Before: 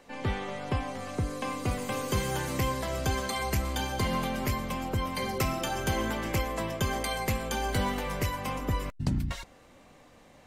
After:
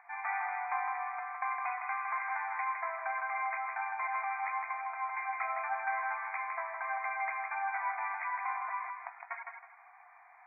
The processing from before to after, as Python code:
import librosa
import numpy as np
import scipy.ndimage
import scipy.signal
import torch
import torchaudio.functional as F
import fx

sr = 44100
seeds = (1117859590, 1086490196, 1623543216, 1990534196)

y = fx.brickwall_bandpass(x, sr, low_hz=660.0, high_hz=2500.0)
y = fx.rider(y, sr, range_db=10, speed_s=2.0)
y = fx.echo_feedback(y, sr, ms=160, feedback_pct=28, wet_db=-5)